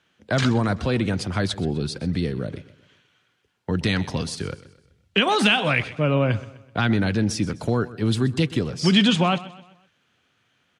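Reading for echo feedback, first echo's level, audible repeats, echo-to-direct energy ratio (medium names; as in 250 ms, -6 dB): 43%, -17.5 dB, 3, -16.5 dB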